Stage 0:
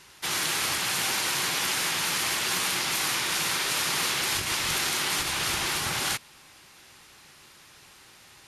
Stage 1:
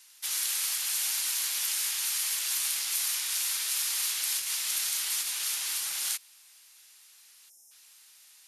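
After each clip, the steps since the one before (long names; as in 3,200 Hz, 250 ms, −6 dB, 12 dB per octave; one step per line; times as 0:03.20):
gain on a spectral selection 0:07.50–0:07.71, 890–5,100 Hz −25 dB
first difference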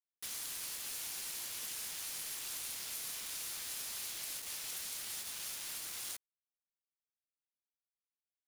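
downward compressor 2 to 1, threshold −48 dBFS, peak gain reduction 12 dB
bit reduction 7 bits
level −2 dB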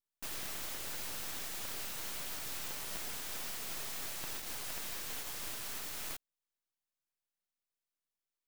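full-wave rectification
level +2 dB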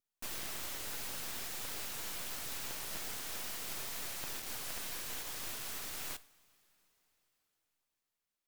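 coupled-rooms reverb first 0.47 s, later 4.6 s, from −18 dB, DRR 14.5 dB
pitch vibrato 7 Hz 79 cents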